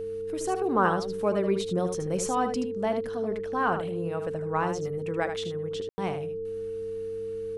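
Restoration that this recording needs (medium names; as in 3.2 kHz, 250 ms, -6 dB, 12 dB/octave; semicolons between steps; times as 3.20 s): de-hum 98.8 Hz, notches 3; band-stop 450 Hz, Q 30; room tone fill 5.89–5.98 s; inverse comb 77 ms -8 dB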